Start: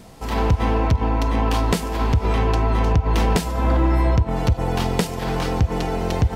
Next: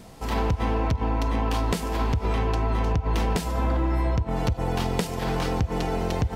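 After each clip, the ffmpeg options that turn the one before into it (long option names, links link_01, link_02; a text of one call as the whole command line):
ffmpeg -i in.wav -af "acompressor=threshold=-18dB:ratio=6,volume=-2dB" out.wav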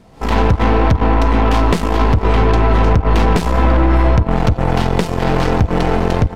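ffmpeg -i in.wav -af "dynaudnorm=framelen=120:gausssize=3:maxgain=14dB,aeval=exprs='0.794*(cos(1*acos(clip(val(0)/0.794,-1,1)))-cos(1*PI/2))+0.1*(cos(8*acos(clip(val(0)/0.794,-1,1)))-cos(8*PI/2))':channel_layout=same,lowpass=frequency=2800:poles=1,volume=-1dB" out.wav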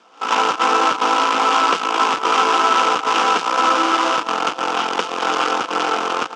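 ffmpeg -i in.wav -af "acrusher=bits=2:mode=log:mix=0:aa=0.000001,highpass=frequency=370:width=0.5412,highpass=frequency=370:width=1.3066,equalizer=frequency=400:width_type=q:width=4:gain=-9,equalizer=frequency=620:width_type=q:width=4:gain=-9,equalizer=frequency=1300:width_type=q:width=4:gain=10,equalizer=frequency=1900:width_type=q:width=4:gain=-8,equalizer=frequency=2900:width_type=q:width=4:gain=5,equalizer=frequency=4200:width_type=q:width=4:gain=-6,lowpass=frequency=6200:width=0.5412,lowpass=frequency=6200:width=1.3066" out.wav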